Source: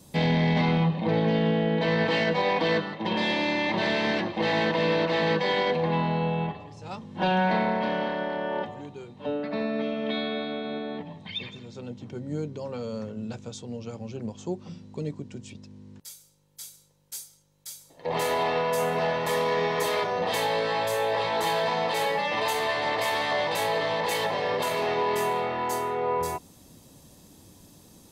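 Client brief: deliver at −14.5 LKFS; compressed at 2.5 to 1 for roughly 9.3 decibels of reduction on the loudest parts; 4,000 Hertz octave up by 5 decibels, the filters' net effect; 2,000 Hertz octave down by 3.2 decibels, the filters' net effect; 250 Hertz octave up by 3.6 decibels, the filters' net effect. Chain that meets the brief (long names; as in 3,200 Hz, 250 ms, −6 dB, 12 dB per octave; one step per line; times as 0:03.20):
parametric band 250 Hz +5 dB
parametric band 2,000 Hz −6 dB
parametric band 4,000 Hz +8 dB
downward compressor 2.5 to 1, threshold −32 dBFS
level +18.5 dB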